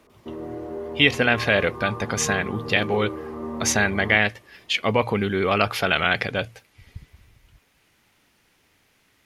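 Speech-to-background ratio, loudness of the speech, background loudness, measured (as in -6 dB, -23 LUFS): 11.5 dB, -22.0 LUFS, -33.5 LUFS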